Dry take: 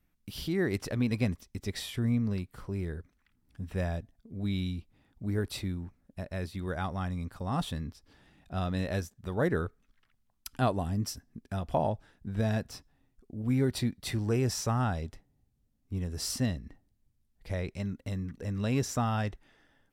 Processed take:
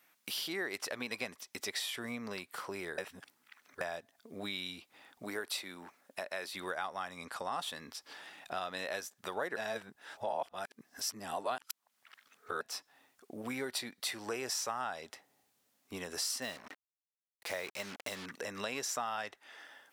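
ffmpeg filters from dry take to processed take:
-filter_complex "[0:a]asettb=1/sr,asplit=3[a][b][c];[a]atrim=end=5.244[d];[b]atrim=start=5.24:end=6.52,asetpts=PTS-STARTPTS,afade=t=in:d=0.004:c=qsin,afade=t=out:st=1.276:d=0.004:c=qsin,highpass=f=220:p=1[e];[c]atrim=start=6.516[f];[d][e]acrossfade=d=0.004:c1=hsin:c2=qsin[g];[g][f]acrossfade=d=0.004:c1=qsin:c2=hsin,asettb=1/sr,asplit=3[h][i][j];[h]atrim=end=7.184[k];[i]atrim=start=7.18:end=7.61,asetpts=PTS-STARTPTS,afade=t=in:d=0.004:c=qsin,afade=t=out:st=0.426:d=0.004:c=qsin,lowpass=f=12k:w=0.5412,lowpass=f=12k:w=1.3066[l];[j]atrim=start=7.606[m];[k][l]acrossfade=d=0.004:c1=hsin:c2=qsin[n];[n][m]acrossfade=d=0.004:c1=qsin:c2=hsin,asettb=1/sr,asplit=3[o][p][q];[o]atrim=end=16.424[r];[p]atrim=start=16.42:end=18.26,asetpts=PTS-STARTPTS,afade=t=in:d=0.004:c=qsin,afade=t=out:st=1.836:d=0.004:c=qsin,acrusher=bits=7:mix=0:aa=0.5[s];[q]atrim=start=18.256[t];[r][s]acrossfade=d=0.004:c1=hsin:c2=qsin[u];[u][t]acrossfade=d=0.004:c1=qsin:c2=hsin,asplit=5[v][w][x][y][z];[v]atrim=end=2.982[aa];[w]atrim=start=2.978:end=3.812,asetpts=PTS-STARTPTS,areverse[ab];[x]atrim=start=3.808:end=9.562[ac];[y]atrim=start=9.558:end=12.612,asetpts=PTS-STARTPTS,areverse[ad];[z]atrim=start=12.608[ae];[aa][ab]acrossfade=d=0.004:c1=hsin:c2=hsin[af];[af][ac]acrossfade=d=0.004:c1=hsin:c2=hsin[ag];[ag][ad]acrossfade=d=0.004:c1=hsin:c2=hsin[ah];[ah][ae]acrossfade=d=0.004:c1=hsin:c2=hsin,highpass=710,acompressor=threshold=-54dB:ratio=3,volume=14.5dB"

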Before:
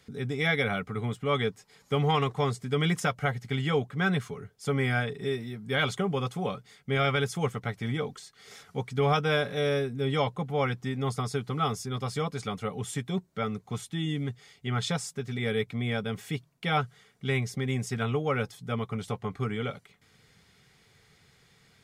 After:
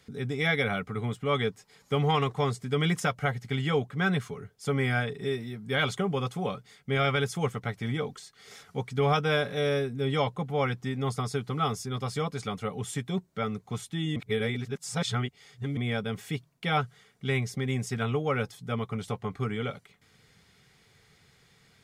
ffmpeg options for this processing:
-filter_complex "[0:a]asplit=3[a][b][c];[a]atrim=end=14.162[d];[b]atrim=start=14.158:end=15.772,asetpts=PTS-STARTPTS,areverse[e];[c]atrim=start=15.768[f];[d][e]acrossfade=d=0.004:c1=hsin:c2=hsin[g];[g][f]acrossfade=d=0.004:c1=hsin:c2=hsin"

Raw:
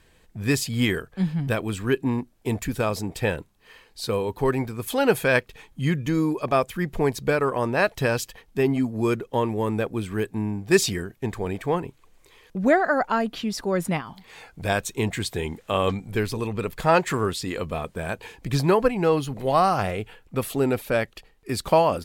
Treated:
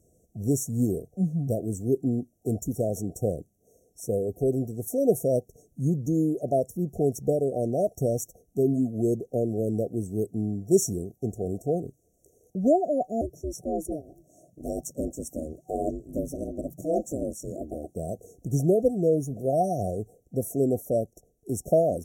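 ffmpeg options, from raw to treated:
-filter_complex "[0:a]asettb=1/sr,asplit=3[a][b][c];[a]atrim=end=13.214[d];[b]atrim=start=13.21:end=17.95,asetpts=PTS-STARTPTS,afade=t=in:d=0.004:c=qsin,afade=t=out:st=4.736:d=0.004:c=qsin,aeval=exprs='val(0)*sin(2*PI*150*n/s)':c=same[e];[c]atrim=start=17.946[f];[d][e]acrossfade=d=0.004:c1=hsin:c2=qsin[g];[g][f]acrossfade=d=0.004:c1=qsin:c2=hsin,afftfilt=real='re*(1-between(b*sr/4096,750,5500))':imag='im*(1-between(b*sr/4096,750,5500))':win_size=4096:overlap=0.75,highpass=64,volume=-1.5dB"

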